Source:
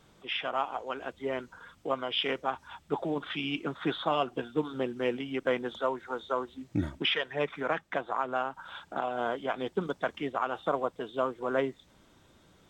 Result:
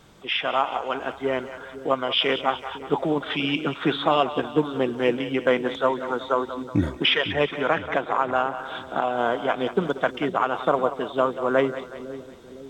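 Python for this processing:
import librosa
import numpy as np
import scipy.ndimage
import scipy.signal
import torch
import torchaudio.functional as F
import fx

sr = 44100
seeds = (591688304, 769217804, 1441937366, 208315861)

y = fx.echo_split(x, sr, split_hz=450.0, low_ms=507, high_ms=184, feedback_pct=52, wet_db=-12)
y = y * 10.0 ** (8.0 / 20.0)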